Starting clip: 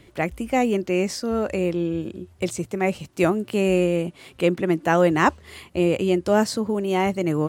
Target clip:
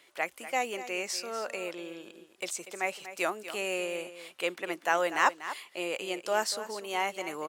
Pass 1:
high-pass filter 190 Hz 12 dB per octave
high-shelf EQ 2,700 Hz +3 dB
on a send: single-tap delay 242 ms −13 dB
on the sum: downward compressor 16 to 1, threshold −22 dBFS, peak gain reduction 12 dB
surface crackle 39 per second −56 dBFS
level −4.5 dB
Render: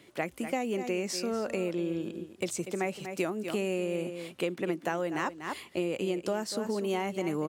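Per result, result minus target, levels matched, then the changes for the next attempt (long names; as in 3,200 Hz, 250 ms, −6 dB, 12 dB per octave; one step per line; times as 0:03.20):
downward compressor: peak gain reduction +12 dB; 250 Hz band +10.0 dB
remove: downward compressor 16 to 1, threshold −22 dBFS, peak gain reduction 12 dB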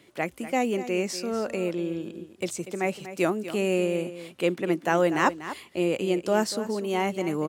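250 Hz band +9.5 dB
change: high-pass filter 730 Hz 12 dB per octave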